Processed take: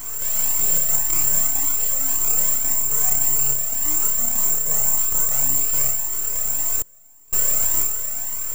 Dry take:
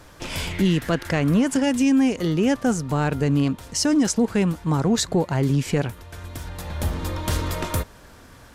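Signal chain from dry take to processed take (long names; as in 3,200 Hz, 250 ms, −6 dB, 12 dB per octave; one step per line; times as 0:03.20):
compressor on every frequency bin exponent 0.4
graphic EQ with 15 bands 100 Hz −4 dB, 250 Hz −11 dB, 10,000 Hz −11 dB
full-wave rectification
on a send: flutter between parallel walls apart 5.1 metres, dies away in 0.54 s
0:06.62–0:07.33: on the sum: gate with flip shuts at −7 dBFS, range −31 dB
bad sample-rate conversion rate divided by 6×, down filtered, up zero stuff
flanger whose copies keep moving one way rising 1.8 Hz
level −10.5 dB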